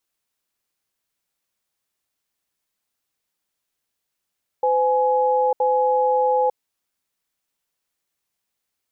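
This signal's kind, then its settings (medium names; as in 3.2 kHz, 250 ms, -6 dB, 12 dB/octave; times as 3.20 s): cadence 509 Hz, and 839 Hz, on 0.90 s, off 0.07 s, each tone -18.5 dBFS 1.93 s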